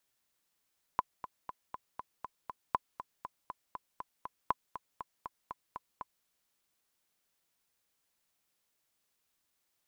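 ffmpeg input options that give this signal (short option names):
-f lavfi -i "aevalsrc='pow(10,(-14.5-12.5*gte(mod(t,7*60/239),60/239))/20)*sin(2*PI*1010*mod(t,60/239))*exp(-6.91*mod(t,60/239)/0.03)':d=5.27:s=44100"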